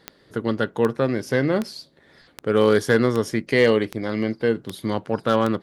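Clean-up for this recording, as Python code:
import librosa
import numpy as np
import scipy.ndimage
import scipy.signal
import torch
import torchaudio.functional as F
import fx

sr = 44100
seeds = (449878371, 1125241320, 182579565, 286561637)

y = fx.fix_declip(x, sr, threshold_db=-7.0)
y = fx.fix_declick_ar(y, sr, threshold=10.0)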